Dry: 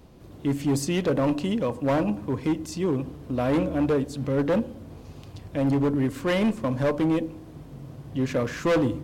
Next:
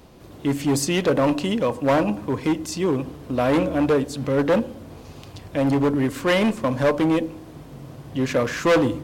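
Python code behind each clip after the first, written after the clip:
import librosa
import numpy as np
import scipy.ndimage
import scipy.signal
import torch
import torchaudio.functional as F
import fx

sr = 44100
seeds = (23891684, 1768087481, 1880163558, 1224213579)

y = fx.low_shelf(x, sr, hz=340.0, db=-7.0)
y = y * librosa.db_to_amplitude(7.0)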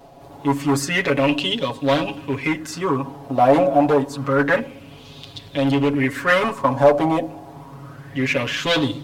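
y = x + 0.97 * np.pad(x, (int(7.2 * sr / 1000.0), 0))[:len(x)]
y = fx.bell_lfo(y, sr, hz=0.28, low_hz=700.0, high_hz=3700.0, db=16)
y = y * librosa.db_to_amplitude(-4.5)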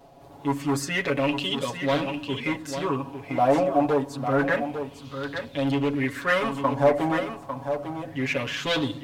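y = x + 10.0 ** (-8.5 / 20.0) * np.pad(x, (int(850 * sr / 1000.0), 0))[:len(x)]
y = y * librosa.db_to_amplitude(-6.0)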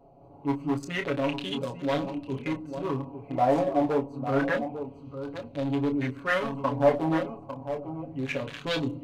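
y = fx.wiener(x, sr, points=25)
y = fx.chorus_voices(y, sr, voices=4, hz=0.52, base_ms=28, depth_ms=3.9, mix_pct=30)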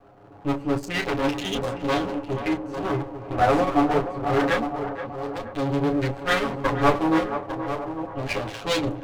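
y = fx.lower_of_two(x, sr, delay_ms=9.7)
y = fx.echo_banded(y, sr, ms=475, feedback_pct=57, hz=740.0, wet_db=-8.5)
y = y * librosa.db_to_amplitude(5.5)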